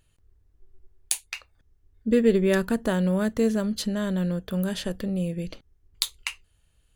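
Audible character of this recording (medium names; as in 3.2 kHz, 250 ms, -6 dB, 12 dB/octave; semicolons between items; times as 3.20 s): noise floor -66 dBFS; spectral tilt -5.0 dB/octave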